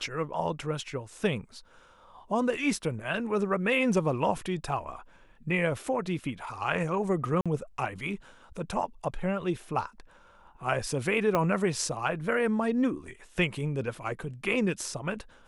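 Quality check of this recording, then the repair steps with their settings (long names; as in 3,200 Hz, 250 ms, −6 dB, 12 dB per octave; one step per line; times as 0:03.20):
0:07.41–0:07.46: drop-out 46 ms
0:11.35: click −13 dBFS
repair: click removal
repair the gap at 0:07.41, 46 ms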